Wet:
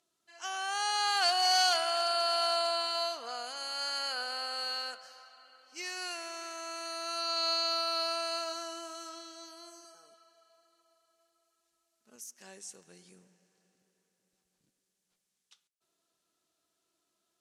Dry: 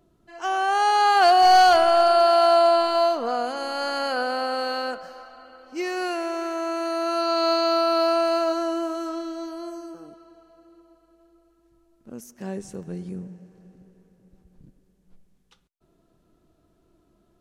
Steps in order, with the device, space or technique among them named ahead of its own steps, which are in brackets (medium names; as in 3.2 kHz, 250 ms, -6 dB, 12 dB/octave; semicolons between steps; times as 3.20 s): piezo pickup straight into a mixer (low-pass 8 kHz 12 dB/octave; differentiator); 9.84–12.16 s: comb 4.7 ms, depth 76%; trim +4 dB